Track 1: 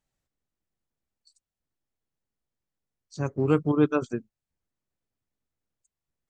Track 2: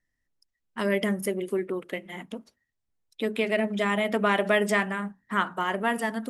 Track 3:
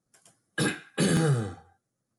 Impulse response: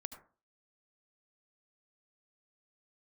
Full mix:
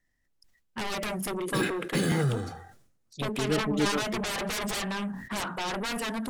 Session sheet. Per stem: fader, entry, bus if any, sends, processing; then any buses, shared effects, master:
−6.5 dB, 0.00 s, no send, gate on every frequency bin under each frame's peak −20 dB strong
−17.5 dB, 0.00 s, no send, sine wavefolder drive 17 dB, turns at −11 dBFS
−2.5 dB, 0.95 s, no send, running median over 3 samples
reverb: not used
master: level that may fall only so fast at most 67 dB per second

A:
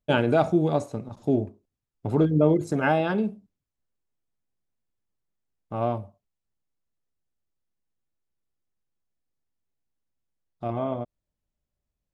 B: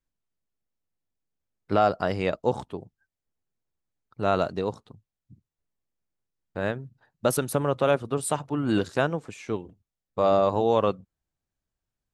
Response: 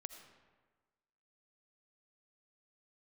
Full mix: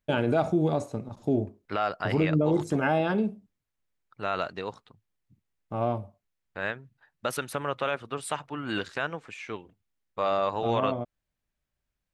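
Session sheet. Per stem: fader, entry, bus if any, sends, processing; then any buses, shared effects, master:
−1.0 dB, 0.00 s, no send, no processing
−10.5 dB, 0.00 s, no send, parametric band 2,100 Hz +15 dB 2.5 octaves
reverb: not used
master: brickwall limiter −15 dBFS, peak gain reduction 6 dB

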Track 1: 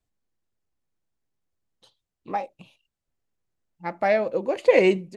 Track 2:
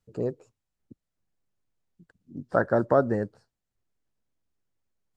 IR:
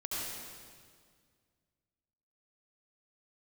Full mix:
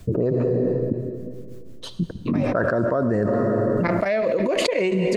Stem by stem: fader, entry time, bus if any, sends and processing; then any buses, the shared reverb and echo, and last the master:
−7.0 dB, 0.00 s, send −23.5 dB, tremolo along a rectified sine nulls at 5.8 Hz; automatic ducking −13 dB, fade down 0.45 s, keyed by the second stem
−4.5 dB, 0.00 s, send −21 dB, low-pass that shuts in the quiet parts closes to 370 Hz, open at −21 dBFS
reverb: on, RT60 1.9 s, pre-delay 64 ms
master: Butterworth band-reject 820 Hz, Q 5.6; envelope flattener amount 100%

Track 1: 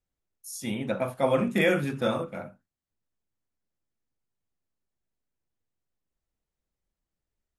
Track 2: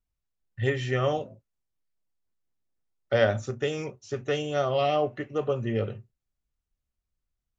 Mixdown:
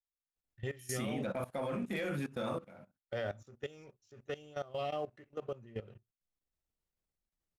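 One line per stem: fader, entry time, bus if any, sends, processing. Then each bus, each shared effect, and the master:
+0.5 dB, 0.35 s, no send, automatic ducking −8 dB, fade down 1.85 s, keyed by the second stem
−14.5 dB, 0.00 s, no send, no processing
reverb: not used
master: leveller curve on the samples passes 1; output level in coarse steps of 18 dB

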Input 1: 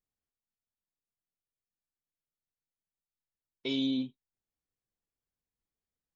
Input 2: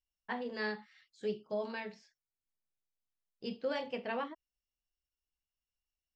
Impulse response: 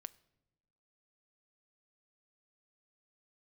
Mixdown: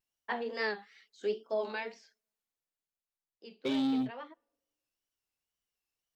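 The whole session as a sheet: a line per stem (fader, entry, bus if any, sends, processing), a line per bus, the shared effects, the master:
−2.0 dB, 0.00 s, no send, high-shelf EQ 2,800 Hz −11 dB; leveller curve on the samples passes 2
+3.0 dB, 0.00 s, send −13.5 dB, high-pass filter 270 Hz 24 dB per octave; tape wow and flutter 93 cents; automatic ducking −18 dB, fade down 1.35 s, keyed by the first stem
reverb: on, pre-delay 5 ms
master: no processing

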